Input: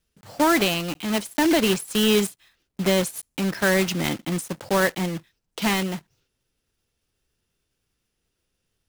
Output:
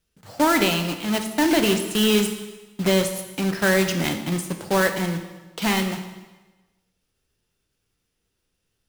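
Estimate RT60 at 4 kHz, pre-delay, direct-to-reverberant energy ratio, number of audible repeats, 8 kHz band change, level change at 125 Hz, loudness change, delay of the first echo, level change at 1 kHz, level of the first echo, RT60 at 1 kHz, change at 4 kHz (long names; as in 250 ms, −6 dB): 1.1 s, 6 ms, 6.0 dB, no echo audible, +1.0 dB, +1.5 dB, +1.0 dB, no echo audible, +1.0 dB, no echo audible, 1.2 s, +1.0 dB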